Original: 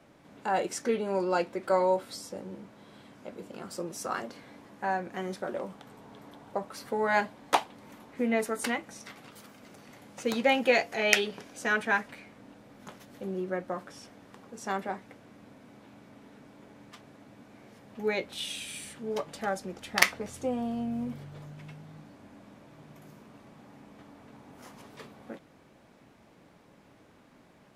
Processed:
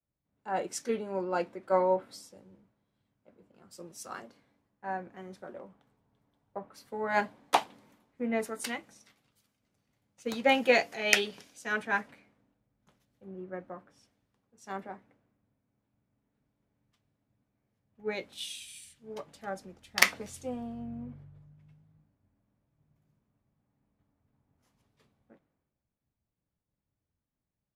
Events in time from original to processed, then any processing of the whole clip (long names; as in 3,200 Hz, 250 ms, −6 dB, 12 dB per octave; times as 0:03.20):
0:16.34–0:17.50: multiband upward and downward compressor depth 40%
whole clip: low-shelf EQ 150 Hz +4 dB; multiband upward and downward expander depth 100%; level −8.5 dB